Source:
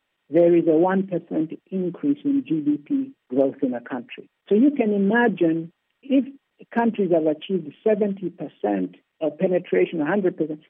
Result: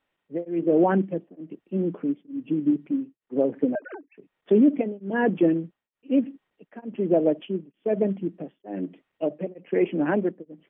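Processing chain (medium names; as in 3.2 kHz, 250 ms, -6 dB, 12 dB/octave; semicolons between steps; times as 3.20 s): 3.75–4.15 s: formants replaced by sine waves; treble shelf 2.2 kHz -9 dB; tremolo of two beating tones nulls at 1.1 Hz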